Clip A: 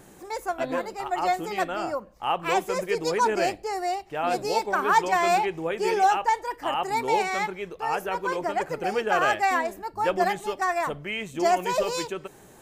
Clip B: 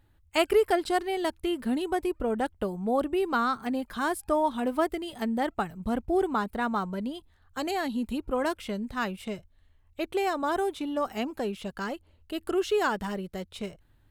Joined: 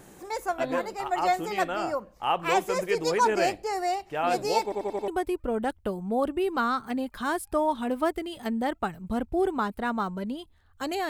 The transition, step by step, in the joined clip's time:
clip A
0:04.63: stutter in place 0.09 s, 5 plays
0:05.08: continue with clip B from 0:01.84

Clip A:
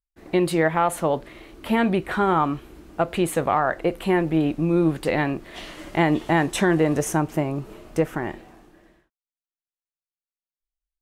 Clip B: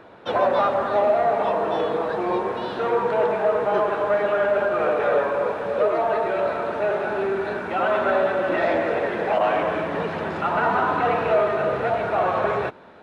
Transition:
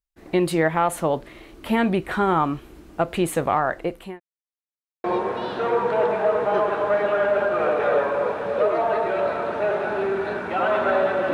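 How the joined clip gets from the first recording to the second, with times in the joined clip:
clip A
0:03.48–0:04.20: fade out equal-power
0:04.20–0:05.04: silence
0:05.04: continue with clip B from 0:02.24

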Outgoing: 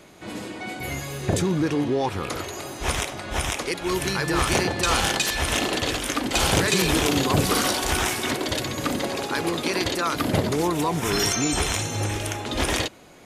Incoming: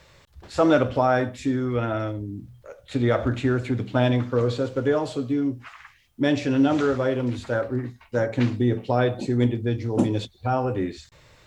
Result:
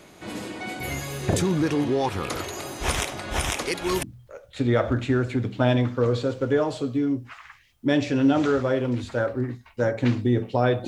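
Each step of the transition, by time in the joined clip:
outgoing
0:04.03: continue with incoming from 0:02.38

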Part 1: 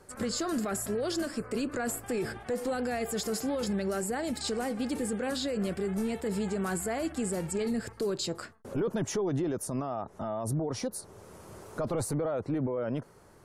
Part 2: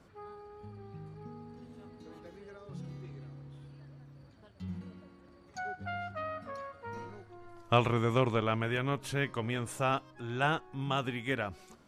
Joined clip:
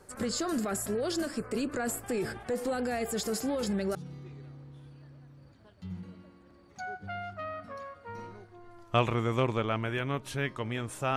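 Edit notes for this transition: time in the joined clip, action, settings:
part 1
0:03.54: mix in part 2 from 0:02.32 0.41 s −7.5 dB
0:03.95: continue with part 2 from 0:02.73

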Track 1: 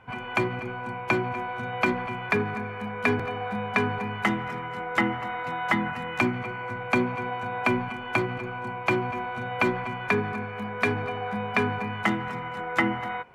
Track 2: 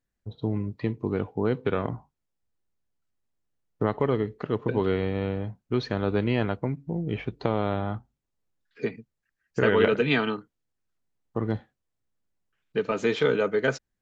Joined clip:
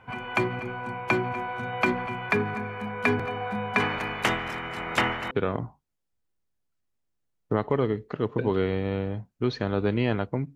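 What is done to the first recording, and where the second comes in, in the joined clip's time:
track 1
0:03.79–0:05.31: ceiling on every frequency bin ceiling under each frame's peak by 20 dB
0:05.31: continue with track 2 from 0:01.61

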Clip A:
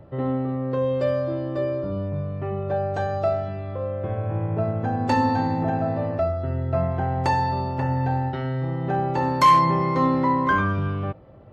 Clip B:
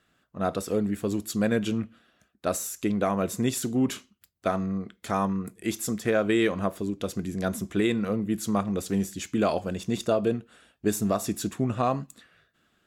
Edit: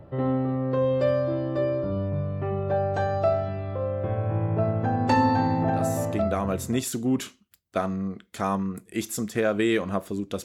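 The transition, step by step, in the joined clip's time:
clip A
0:06.17: continue with clip B from 0:02.87, crossfade 1.38 s equal-power

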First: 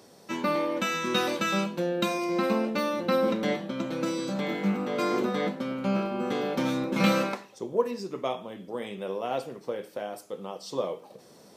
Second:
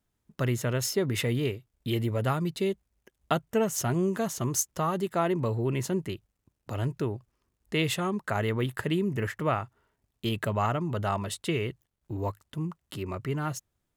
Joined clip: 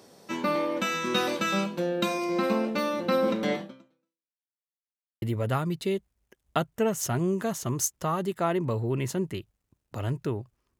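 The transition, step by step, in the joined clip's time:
first
0:03.61–0:04.43: fade out exponential
0:04.43–0:05.22: silence
0:05.22: continue with second from 0:01.97

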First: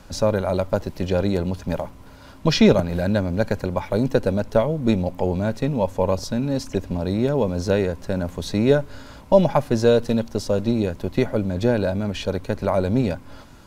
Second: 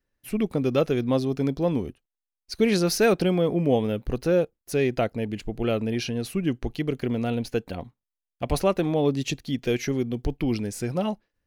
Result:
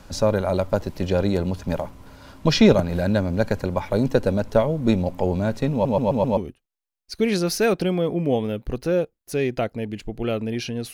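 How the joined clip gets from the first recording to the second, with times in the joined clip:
first
0:05.72: stutter in place 0.13 s, 5 plays
0:06.37: continue with second from 0:01.77

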